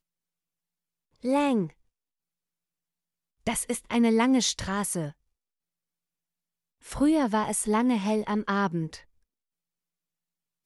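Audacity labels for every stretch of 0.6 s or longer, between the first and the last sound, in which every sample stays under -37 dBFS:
1.670000	3.470000	silence
5.100000	6.880000	silence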